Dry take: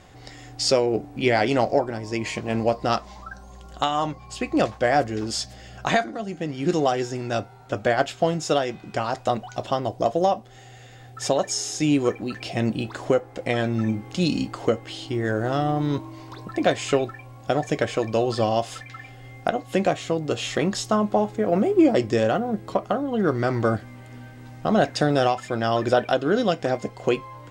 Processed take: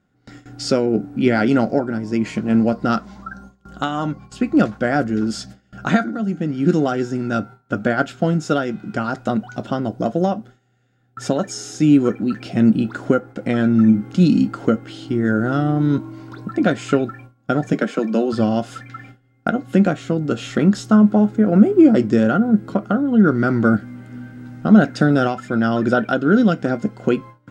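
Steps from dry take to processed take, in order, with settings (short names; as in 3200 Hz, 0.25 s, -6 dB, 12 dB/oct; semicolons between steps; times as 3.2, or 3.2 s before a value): 17.73–18.33 steep high-pass 160 Hz 72 dB/oct; small resonant body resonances 210/1400 Hz, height 17 dB, ringing for 25 ms; gate with hold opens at -26 dBFS; gain -4 dB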